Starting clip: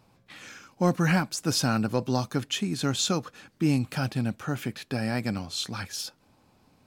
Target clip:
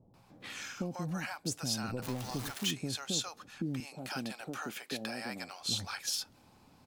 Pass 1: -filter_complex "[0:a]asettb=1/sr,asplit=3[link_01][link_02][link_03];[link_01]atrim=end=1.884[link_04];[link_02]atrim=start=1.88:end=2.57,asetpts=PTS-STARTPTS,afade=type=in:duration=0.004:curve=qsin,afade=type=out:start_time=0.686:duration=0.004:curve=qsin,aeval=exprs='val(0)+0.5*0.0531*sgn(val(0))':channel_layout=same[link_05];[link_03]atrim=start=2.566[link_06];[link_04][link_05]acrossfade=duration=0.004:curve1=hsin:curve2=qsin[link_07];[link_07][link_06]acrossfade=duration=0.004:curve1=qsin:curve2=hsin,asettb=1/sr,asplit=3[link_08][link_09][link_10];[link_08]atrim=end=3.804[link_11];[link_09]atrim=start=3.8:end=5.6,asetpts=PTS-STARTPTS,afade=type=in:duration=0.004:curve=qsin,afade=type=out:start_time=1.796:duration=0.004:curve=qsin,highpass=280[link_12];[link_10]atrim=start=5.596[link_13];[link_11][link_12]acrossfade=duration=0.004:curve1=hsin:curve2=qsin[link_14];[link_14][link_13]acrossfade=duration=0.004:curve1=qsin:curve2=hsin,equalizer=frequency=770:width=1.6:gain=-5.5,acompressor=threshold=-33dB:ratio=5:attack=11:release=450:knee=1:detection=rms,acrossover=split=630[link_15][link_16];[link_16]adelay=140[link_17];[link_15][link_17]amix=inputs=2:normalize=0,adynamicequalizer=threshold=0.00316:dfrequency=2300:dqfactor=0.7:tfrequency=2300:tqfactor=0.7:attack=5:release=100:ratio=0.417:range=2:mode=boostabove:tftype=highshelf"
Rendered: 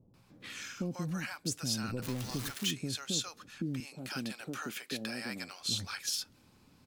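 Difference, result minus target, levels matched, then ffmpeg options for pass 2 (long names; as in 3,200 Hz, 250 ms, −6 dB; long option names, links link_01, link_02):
1,000 Hz band −3.5 dB
-filter_complex "[0:a]asettb=1/sr,asplit=3[link_01][link_02][link_03];[link_01]atrim=end=1.884[link_04];[link_02]atrim=start=1.88:end=2.57,asetpts=PTS-STARTPTS,afade=type=in:duration=0.004:curve=qsin,afade=type=out:start_time=0.686:duration=0.004:curve=qsin,aeval=exprs='val(0)+0.5*0.0531*sgn(val(0))':channel_layout=same[link_05];[link_03]atrim=start=2.566[link_06];[link_04][link_05]acrossfade=duration=0.004:curve1=hsin:curve2=qsin[link_07];[link_07][link_06]acrossfade=duration=0.004:curve1=qsin:curve2=hsin,asettb=1/sr,asplit=3[link_08][link_09][link_10];[link_08]atrim=end=3.804[link_11];[link_09]atrim=start=3.8:end=5.6,asetpts=PTS-STARTPTS,afade=type=in:duration=0.004:curve=qsin,afade=type=out:start_time=1.796:duration=0.004:curve=qsin,highpass=280[link_12];[link_10]atrim=start=5.596[link_13];[link_11][link_12]acrossfade=duration=0.004:curve1=hsin:curve2=qsin[link_14];[link_14][link_13]acrossfade=duration=0.004:curve1=qsin:curve2=hsin,equalizer=frequency=770:width=1.6:gain=3.5,acompressor=threshold=-33dB:ratio=5:attack=11:release=450:knee=1:detection=rms,acrossover=split=630[link_15][link_16];[link_16]adelay=140[link_17];[link_15][link_17]amix=inputs=2:normalize=0,adynamicequalizer=threshold=0.00316:dfrequency=2300:dqfactor=0.7:tfrequency=2300:tqfactor=0.7:attack=5:release=100:ratio=0.417:range=2:mode=boostabove:tftype=highshelf"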